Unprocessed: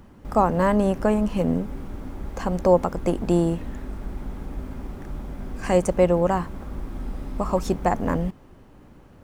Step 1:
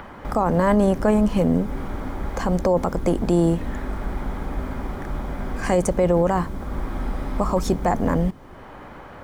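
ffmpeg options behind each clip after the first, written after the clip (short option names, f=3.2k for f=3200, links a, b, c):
-filter_complex "[0:a]bandreject=f=2.7k:w=10,acrossover=split=560|3100[a][b][c];[b]acompressor=mode=upward:threshold=-34dB:ratio=2.5[d];[a][d][c]amix=inputs=3:normalize=0,alimiter=limit=-14dB:level=0:latency=1:release=11,volume=4.5dB"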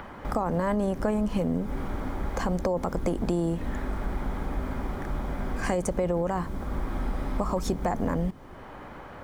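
-af "acompressor=threshold=-20dB:ratio=6,volume=-2.5dB"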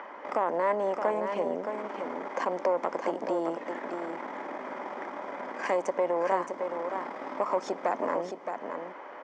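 -filter_complex "[0:a]aeval=exprs='(tanh(8.91*val(0)+0.65)-tanh(0.65))/8.91':c=same,highpass=f=300:w=0.5412,highpass=f=300:w=1.3066,equalizer=f=590:t=q:w=4:g=6,equalizer=f=980:t=q:w=4:g=7,equalizer=f=2k:t=q:w=4:g=6,equalizer=f=4k:t=q:w=4:g=-7,lowpass=f=6.1k:w=0.5412,lowpass=f=6.1k:w=1.3066,asplit=2[a][b];[b]aecho=0:1:619:0.473[c];[a][c]amix=inputs=2:normalize=0"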